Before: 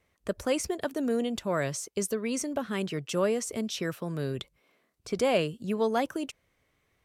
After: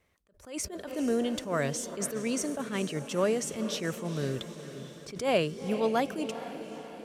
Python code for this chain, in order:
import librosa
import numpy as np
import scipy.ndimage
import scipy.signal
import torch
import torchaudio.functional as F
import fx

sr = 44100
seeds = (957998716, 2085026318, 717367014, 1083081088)

y = fx.echo_diffused(x, sr, ms=457, feedback_pct=58, wet_db=-11.5)
y = fx.attack_slew(y, sr, db_per_s=140.0)